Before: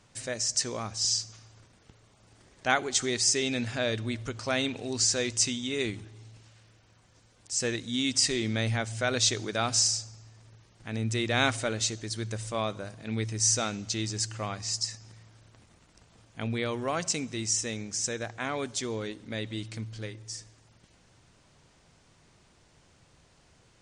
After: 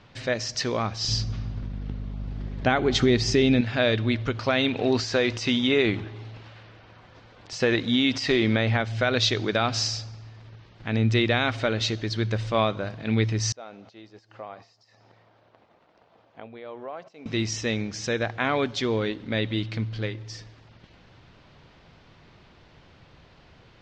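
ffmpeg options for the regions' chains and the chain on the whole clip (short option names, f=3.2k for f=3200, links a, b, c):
-filter_complex "[0:a]asettb=1/sr,asplit=3[a][b][c];[a]atrim=end=1.084[d];[b]atrim=start=1.08:end=3.61,asetpts=PTS-STARTPTS,afade=t=in:d=0.004:c=qsin,afade=t=out:st=2.526:d=0.004:c=qsin,lowshelf=f=430:g=12,aeval=exprs='val(0)+0.01*(sin(2*PI*50*n/s)+sin(2*PI*2*50*n/s)/2+sin(2*PI*3*50*n/s)/3+sin(2*PI*4*50*n/s)/4+sin(2*PI*5*50*n/s)/5)':c=same[e];[c]atrim=start=3.606[f];[d][e]acrossfade=d=0.004:c1=hsin:c2=qsin[g];[g][f]acrossfade=d=0.004:c1=qsin:c2=hsin,asettb=1/sr,asplit=3[h][i][j];[h]atrim=end=4.794[k];[i]atrim=start=4.79:end=8.8,asetpts=PTS-STARTPTS,afade=t=in:d=0.004:c=qsin,afade=t=out:st=4.006:d=0.004:c=qsin,acompressor=threshold=-28dB:ratio=5:attack=3.2:release=140:knee=1:detection=peak,equalizer=f=850:w=0.36:g=6.5[l];[j]atrim=start=8.796[m];[k][l]acrossfade=d=0.004:c1=hsin:c2=qsin[n];[n][m]acrossfade=d=0.004:c1=qsin:c2=hsin,asettb=1/sr,asplit=3[o][p][q];[o]atrim=end=13.524[r];[p]atrim=start=13.52:end=17.26,asetpts=PTS-STARTPTS,afade=t=in:d=0.004:c=qsin,afade=t=out:st=3.736:d=0.004:c=qsin,aemphasis=mode=production:type=75fm,acompressor=threshold=-38dB:ratio=6:attack=3.2:release=140:knee=1:detection=peak,bandpass=f=660:t=q:w=1.4[s];[q]atrim=start=17.256[t];[r][s]acrossfade=d=0.004:c1=hsin:c2=qsin[u];[u][t]acrossfade=d=0.004:c1=qsin:c2=hsin,lowpass=f=4.2k:w=0.5412,lowpass=f=4.2k:w=1.3066,alimiter=limit=-19dB:level=0:latency=1:release=237,volume=8.5dB"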